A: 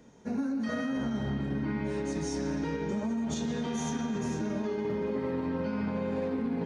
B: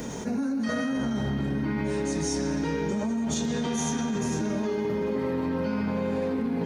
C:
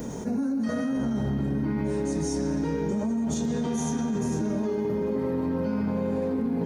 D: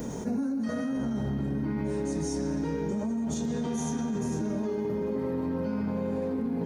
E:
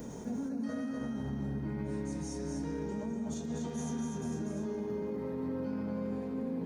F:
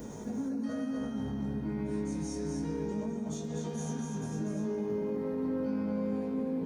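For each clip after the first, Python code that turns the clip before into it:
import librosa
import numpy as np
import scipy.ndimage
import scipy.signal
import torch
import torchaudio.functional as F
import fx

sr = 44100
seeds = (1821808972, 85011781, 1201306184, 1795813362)

y1 = fx.high_shelf(x, sr, hz=7200.0, db=11.0)
y1 = fx.env_flatten(y1, sr, amount_pct=70)
y1 = y1 * librosa.db_to_amplitude(1.5)
y2 = fx.peak_eq(y1, sr, hz=2900.0, db=-9.5, octaves=2.7)
y2 = y2 * librosa.db_to_amplitude(1.5)
y3 = fx.rider(y2, sr, range_db=10, speed_s=0.5)
y3 = y3 * librosa.db_to_amplitude(-3.0)
y4 = y3 + 10.0 ** (-4.5 / 20.0) * np.pad(y3, (int(245 * sr / 1000.0), 0))[:len(y3)]
y4 = y4 * librosa.db_to_amplitude(-8.0)
y5 = fx.doubler(y4, sr, ms=19.0, db=-4.5)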